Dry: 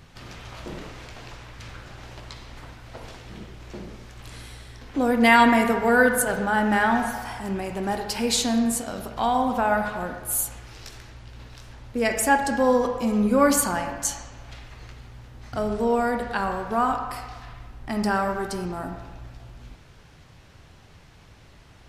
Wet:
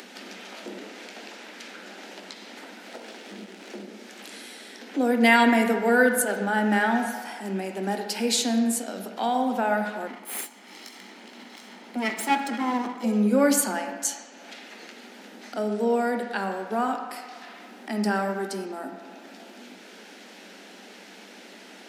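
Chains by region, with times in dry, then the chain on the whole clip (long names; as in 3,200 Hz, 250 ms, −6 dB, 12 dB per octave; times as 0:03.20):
0:02.89–0:03.83: log-companded quantiser 4 bits + high-frequency loss of the air 56 metres
0:10.07–0:13.04: lower of the sound and its delayed copy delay 0.95 ms + high-shelf EQ 4,100 Hz −6.5 dB
whole clip: Chebyshev high-pass filter 190 Hz, order 10; parametric band 1,100 Hz −11 dB 0.38 octaves; upward compression, threshold −35 dBFS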